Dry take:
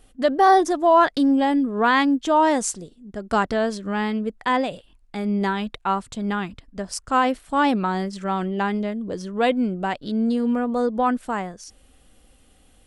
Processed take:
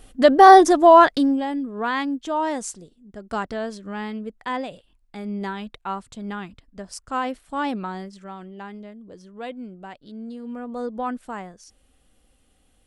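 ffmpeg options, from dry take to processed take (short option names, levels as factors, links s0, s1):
-af "volume=4.47,afade=t=out:st=0.82:d=0.61:silence=0.237137,afade=t=out:st=7.79:d=0.57:silence=0.421697,afade=t=in:st=10.42:d=0.44:silence=0.446684"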